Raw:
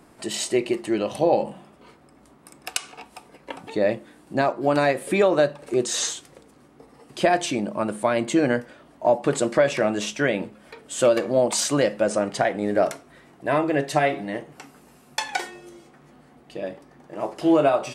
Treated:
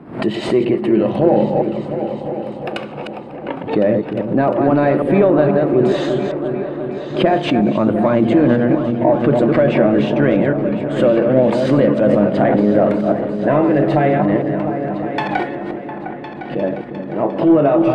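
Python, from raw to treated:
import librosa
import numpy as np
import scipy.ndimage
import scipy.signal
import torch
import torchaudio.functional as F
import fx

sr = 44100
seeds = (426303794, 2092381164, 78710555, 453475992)

p1 = fx.reverse_delay(x, sr, ms=162, wet_db=-8)
p2 = scipy.signal.sosfilt(scipy.signal.butter(2, 120.0, 'highpass', fs=sr, output='sos'), p1)
p3 = fx.low_shelf(p2, sr, hz=370.0, db=10.5)
p4 = fx.notch(p3, sr, hz=5600.0, q=17.0)
p5 = fx.over_compress(p4, sr, threshold_db=-22.0, ratio=-1.0)
p6 = p4 + (p5 * librosa.db_to_amplitude(-2.0))
p7 = 10.0 ** (-2.5 / 20.0) * np.tanh(p6 / 10.0 ** (-2.5 / 20.0))
p8 = fx.air_absorb(p7, sr, metres=460.0)
p9 = p8 + fx.echo_opening(p8, sr, ms=353, hz=400, octaves=2, feedback_pct=70, wet_db=-6, dry=0)
p10 = fx.pre_swell(p9, sr, db_per_s=120.0)
y = p10 * librosa.db_to_amplitude(1.5)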